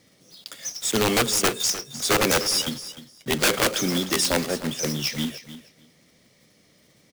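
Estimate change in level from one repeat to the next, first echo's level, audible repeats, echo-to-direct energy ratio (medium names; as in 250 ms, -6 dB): -16.0 dB, -14.0 dB, 2, -14.0 dB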